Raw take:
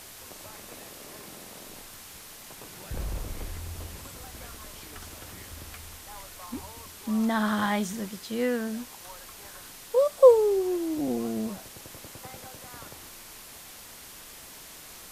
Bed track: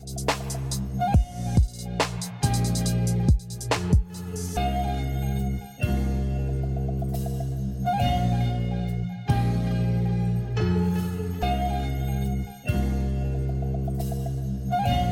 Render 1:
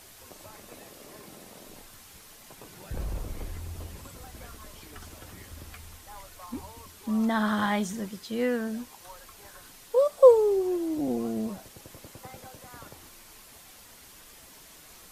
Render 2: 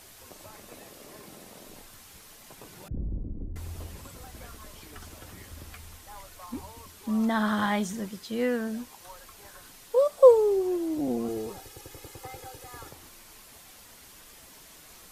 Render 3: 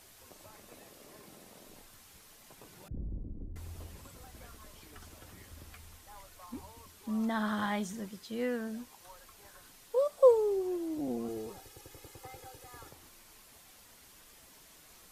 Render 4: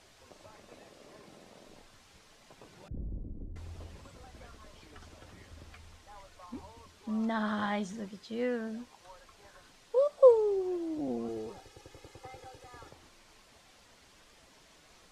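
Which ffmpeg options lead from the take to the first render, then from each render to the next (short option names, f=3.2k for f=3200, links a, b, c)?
-af "afftdn=nr=6:nf=-46"
-filter_complex "[0:a]asettb=1/sr,asplit=3[a][b][c];[a]atrim=end=2.884[d];[b]atrim=start=2.88:end=3.56,asetpts=PTS-STARTPTS,afade=t=in:d=0.004:c=qsin,afade=t=out:st=0.676:d=0.004:c=qsin,lowpass=f=260:t=q:w=1.9[e];[c]atrim=start=3.556[f];[d][e]acrossfade=d=0.004:c1=hsin:c2=qsin[g];[g][f]acrossfade=d=0.004:c1=qsin:c2=hsin,asettb=1/sr,asplit=3[h][i][j];[h]atrim=end=11.284[k];[i]atrim=start=11.28:end=12.91,asetpts=PTS-STARTPTS,afade=t=in:d=0.004:c=qsin,afade=t=out:st=1.626:d=0.004:c=qsin,aecho=1:1:2.4:0.81,atrim=end_sample=71883[l];[j]atrim=start=12.906[m];[k][l]acrossfade=d=0.004:c1=hsin:c2=qsin[n];[n][m]acrossfade=d=0.004:c1=qsin:c2=hsin"
-af "volume=-6.5dB"
-af "lowpass=5.9k,equalizer=f=580:t=o:w=0.73:g=2.5"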